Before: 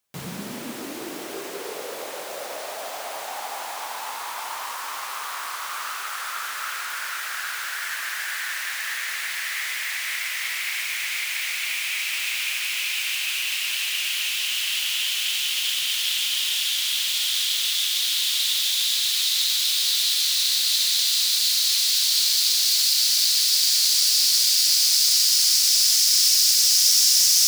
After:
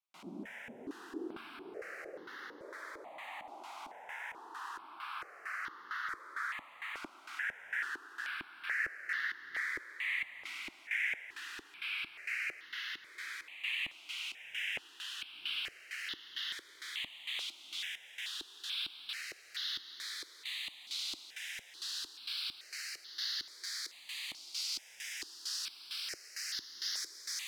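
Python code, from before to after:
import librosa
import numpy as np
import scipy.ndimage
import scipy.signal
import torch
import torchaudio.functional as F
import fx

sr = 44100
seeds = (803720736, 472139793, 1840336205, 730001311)

y = fx.filter_lfo_bandpass(x, sr, shape='square', hz=2.2, low_hz=330.0, high_hz=1800.0, q=2.8)
y = fx.echo_diffused(y, sr, ms=761, feedback_pct=43, wet_db=-14.5)
y = fx.phaser_held(y, sr, hz=2.3, low_hz=470.0, high_hz=2400.0)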